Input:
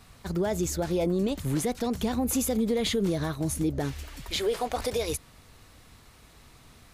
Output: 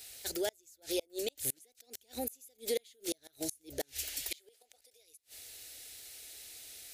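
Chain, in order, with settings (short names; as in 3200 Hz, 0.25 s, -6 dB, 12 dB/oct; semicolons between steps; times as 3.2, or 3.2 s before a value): tilt +4 dB/oct; fixed phaser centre 450 Hz, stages 4; flipped gate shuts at -21 dBFS, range -36 dB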